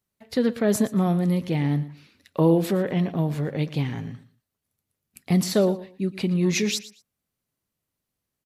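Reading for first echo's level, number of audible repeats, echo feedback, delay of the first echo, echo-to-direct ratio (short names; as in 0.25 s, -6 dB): -16.5 dB, 2, 21%, 0.116 s, -16.5 dB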